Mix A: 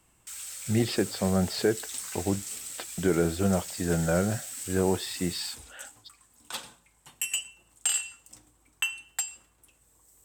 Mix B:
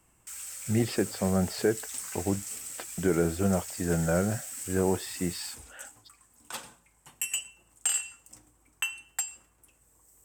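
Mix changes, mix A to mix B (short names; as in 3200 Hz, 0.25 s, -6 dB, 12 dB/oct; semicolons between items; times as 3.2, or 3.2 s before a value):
speech: send off; master: add bell 3800 Hz -7.5 dB 0.68 oct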